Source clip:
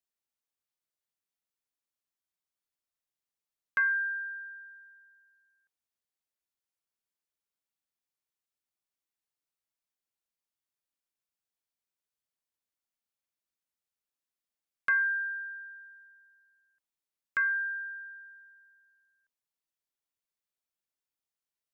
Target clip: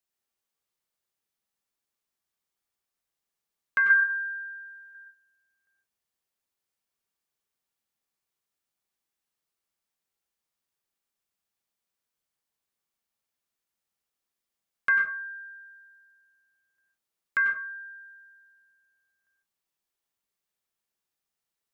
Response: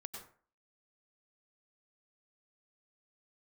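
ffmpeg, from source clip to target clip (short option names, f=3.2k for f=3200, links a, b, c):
-filter_complex "[0:a]asettb=1/sr,asplit=3[a][b][c];[a]atrim=end=3.904[d];[b]atrim=start=3.9:end=4.95,asetpts=PTS-STARTPTS,afade=t=in:d=0.004:c=qsin,afade=t=out:st=1.046:d=0.004:c=qsin,equalizer=f=125:t=o:w=1:g=10,equalizer=f=250:t=o:w=1:g=-7,equalizer=f=500:t=o:w=1:g=12,equalizer=f=1k:t=o:w=1:g=9,equalizer=f=2k:t=o:w=1:g=7[e];[c]atrim=start=4.946[f];[d][e]acrossfade=d=0.004:c1=hsin:c2=qsin[g];[g][f]acrossfade=d=0.004:c1=qsin:c2=hsin[h];[1:a]atrim=start_sample=2205,afade=t=out:st=0.25:d=0.01,atrim=end_sample=11466[i];[h][i]afir=irnorm=-1:irlink=0,volume=9dB"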